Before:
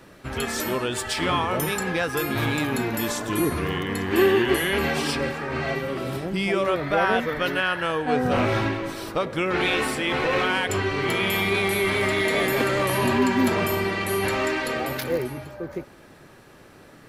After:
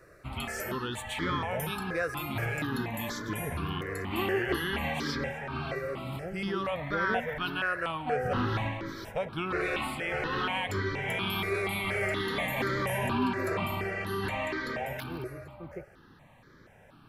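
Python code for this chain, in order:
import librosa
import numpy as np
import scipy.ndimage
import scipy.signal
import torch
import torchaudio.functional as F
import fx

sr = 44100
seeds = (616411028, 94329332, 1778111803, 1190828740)

y = fx.high_shelf(x, sr, hz=5400.0, db=fx.steps((0.0, -5.0), (13.07, -9.5)))
y = fx.phaser_held(y, sr, hz=4.2, low_hz=870.0, high_hz=2700.0)
y = y * 10.0 ** (-4.0 / 20.0)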